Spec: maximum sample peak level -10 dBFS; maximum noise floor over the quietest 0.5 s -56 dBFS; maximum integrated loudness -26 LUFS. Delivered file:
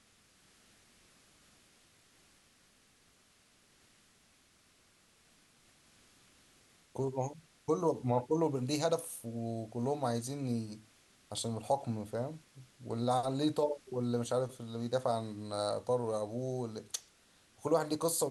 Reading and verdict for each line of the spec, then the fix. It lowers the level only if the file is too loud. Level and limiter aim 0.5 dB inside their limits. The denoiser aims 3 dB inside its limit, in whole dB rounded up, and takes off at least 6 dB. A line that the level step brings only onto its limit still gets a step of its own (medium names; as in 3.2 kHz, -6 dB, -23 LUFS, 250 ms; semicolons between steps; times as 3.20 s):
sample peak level -17.5 dBFS: pass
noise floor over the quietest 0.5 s -67 dBFS: pass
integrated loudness -35.5 LUFS: pass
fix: none needed